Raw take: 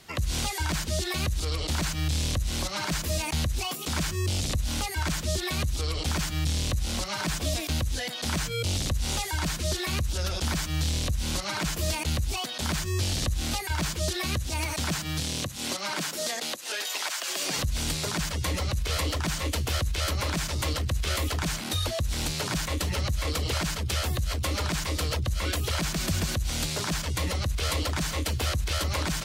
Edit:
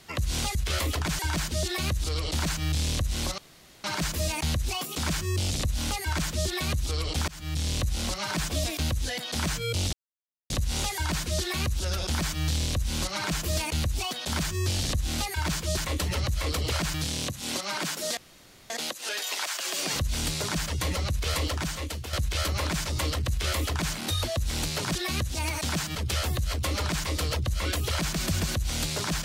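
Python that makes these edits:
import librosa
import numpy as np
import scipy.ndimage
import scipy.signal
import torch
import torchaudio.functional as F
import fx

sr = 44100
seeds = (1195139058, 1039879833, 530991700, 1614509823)

y = fx.edit(x, sr, fx.insert_room_tone(at_s=2.74, length_s=0.46),
    fx.fade_in_from(start_s=6.18, length_s=0.56, curve='qsin', floor_db=-23.5),
    fx.insert_silence(at_s=8.83, length_s=0.57),
    fx.swap(start_s=14.1, length_s=1.0, other_s=22.58, other_length_s=1.17),
    fx.insert_room_tone(at_s=16.33, length_s=0.53),
    fx.fade_out_to(start_s=19.08, length_s=0.68, floor_db=-10.0),
    fx.duplicate(start_s=20.92, length_s=0.64, to_s=0.55), tone=tone)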